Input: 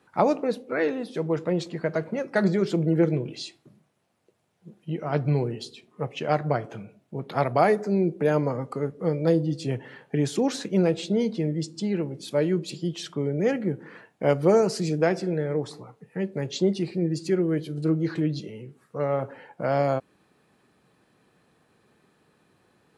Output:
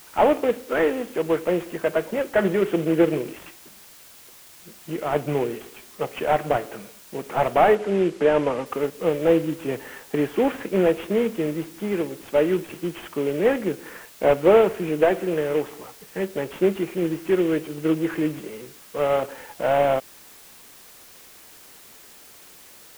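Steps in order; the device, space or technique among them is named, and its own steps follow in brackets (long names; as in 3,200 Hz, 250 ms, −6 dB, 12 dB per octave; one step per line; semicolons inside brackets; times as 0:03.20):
army field radio (band-pass filter 300–3,000 Hz; variable-slope delta modulation 16 kbit/s; white noise bed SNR 24 dB)
0:07.75–0:08.66: low-pass filter 8,100 Hz 12 dB per octave
level +6 dB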